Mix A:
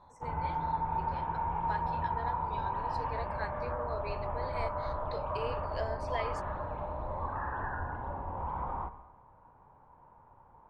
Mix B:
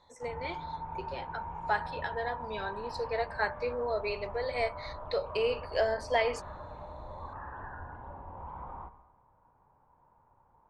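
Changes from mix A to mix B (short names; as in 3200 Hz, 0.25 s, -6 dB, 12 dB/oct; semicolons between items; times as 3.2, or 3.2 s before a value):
speech +9.5 dB; background -7.0 dB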